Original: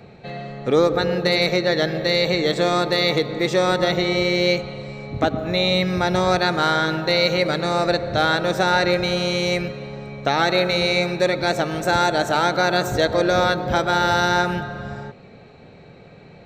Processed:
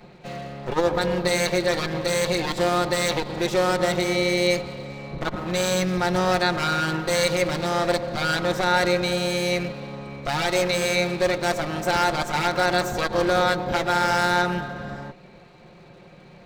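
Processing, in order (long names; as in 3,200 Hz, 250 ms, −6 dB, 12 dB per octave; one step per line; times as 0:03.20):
lower of the sound and its delayed copy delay 5.6 ms
saturating transformer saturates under 160 Hz
level −1.5 dB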